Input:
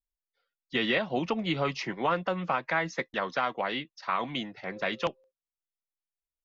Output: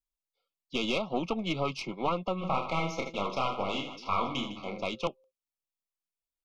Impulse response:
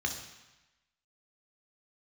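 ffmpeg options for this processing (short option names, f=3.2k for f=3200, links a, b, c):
-filter_complex "[0:a]aeval=exprs='(tanh(10*val(0)+0.65)-tanh(0.65))/10':c=same,asuperstop=centerf=1700:order=20:qfactor=2.2,asplit=3[a][b][c];[a]afade=t=out:st=2.4:d=0.02[d];[b]aecho=1:1:30|78|154.8|277.7|474.3:0.631|0.398|0.251|0.158|0.1,afade=t=in:st=2.4:d=0.02,afade=t=out:st=4.81:d=0.02[e];[c]afade=t=in:st=4.81:d=0.02[f];[d][e][f]amix=inputs=3:normalize=0,volume=1.5dB"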